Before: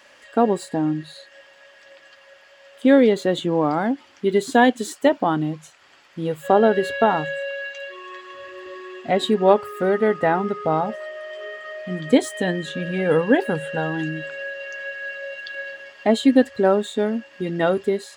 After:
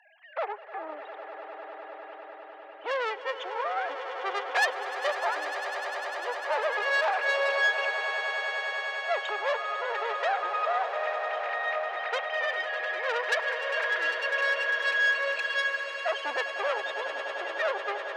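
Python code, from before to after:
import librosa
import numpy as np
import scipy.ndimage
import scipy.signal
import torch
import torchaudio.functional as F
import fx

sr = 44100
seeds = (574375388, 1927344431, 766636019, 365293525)

p1 = fx.sine_speech(x, sr)
p2 = fx.tube_stage(p1, sr, drive_db=20.0, bias=0.65)
p3 = scipy.signal.sosfilt(scipy.signal.butter(4, 660.0, 'highpass', fs=sr, output='sos'), p2)
y = p3 + fx.echo_swell(p3, sr, ms=100, loudest=8, wet_db=-13.5, dry=0)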